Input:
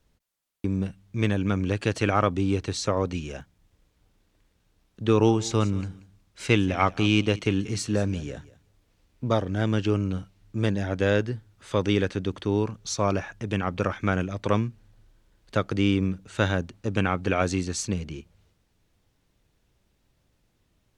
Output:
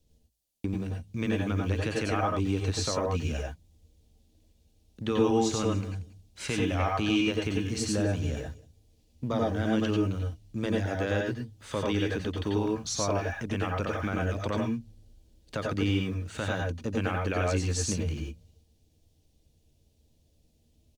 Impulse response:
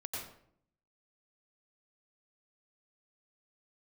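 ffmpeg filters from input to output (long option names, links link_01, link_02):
-filter_complex "[0:a]equalizer=frequency=380:width_type=o:width=0.29:gain=-3.5,bandreject=frequency=54.69:width_type=h:width=4,bandreject=frequency=109.38:width_type=h:width=4,bandreject=frequency=164.07:width_type=h:width=4,asplit=2[link_01][link_02];[link_02]acompressor=threshold=-32dB:ratio=6,volume=2dB[link_03];[link_01][link_03]amix=inputs=2:normalize=0,alimiter=limit=-10.5dB:level=0:latency=1:release=99,acrossover=split=660|2800[link_04][link_05][link_06];[link_04]asplit=2[link_07][link_08];[link_08]adelay=13,volume=-11dB[link_09];[link_07][link_09]amix=inputs=2:normalize=0[link_10];[link_05]aeval=exprs='val(0)*gte(abs(val(0)),0.00299)':channel_layout=same[link_11];[link_10][link_11][link_06]amix=inputs=3:normalize=0[link_12];[1:a]atrim=start_sample=2205,afade=type=out:start_time=0.16:duration=0.01,atrim=end_sample=7497[link_13];[link_12][link_13]afir=irnorm=-1:irlink=0,volume=-2.5dB"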